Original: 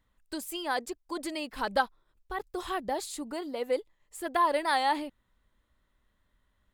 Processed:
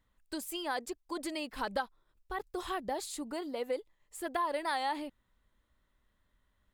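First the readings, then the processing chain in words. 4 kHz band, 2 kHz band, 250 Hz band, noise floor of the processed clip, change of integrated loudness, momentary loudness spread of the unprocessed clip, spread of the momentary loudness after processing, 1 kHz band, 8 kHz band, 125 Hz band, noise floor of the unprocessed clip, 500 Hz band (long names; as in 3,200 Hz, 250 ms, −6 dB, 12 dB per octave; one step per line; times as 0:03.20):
−4.0 dB, −6.0 dB, −3.0 dB, −77 dBFS, −5.5 dB, 13 LU, 9 LU, −6.5 dB, −2.5 dB, can't be measured, −75 dBFS, −4.5 dB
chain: downward compressor 3 to 1, threshold −29 dBFS, peak gain reduction 7.5 dB
level −2 dB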